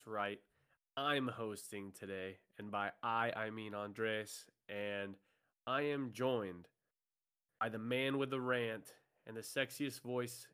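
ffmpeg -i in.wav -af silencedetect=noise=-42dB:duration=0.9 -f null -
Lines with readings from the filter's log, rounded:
silence_start: 6.52
silence_end: 7.61 | silence_duration: 1.10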